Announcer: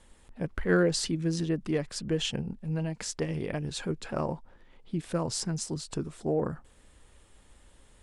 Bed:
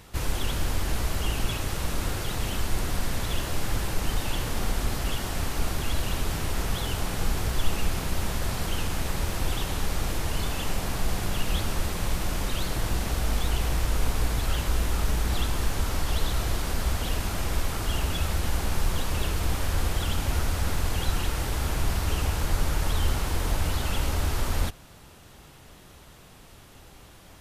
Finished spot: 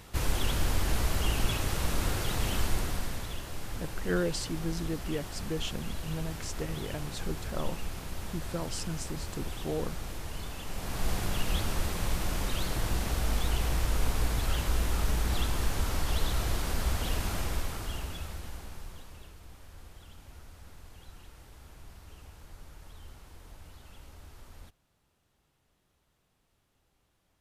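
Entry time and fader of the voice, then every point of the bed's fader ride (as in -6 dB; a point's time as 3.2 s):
3.40 s, -5.5 dB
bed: 2.64 s -1 dB
3.41 s -10.5 dB
10.66 s -10.5 dB
11.07 s -3 dB
17.35 s -3 dB
19.4 s -24 dB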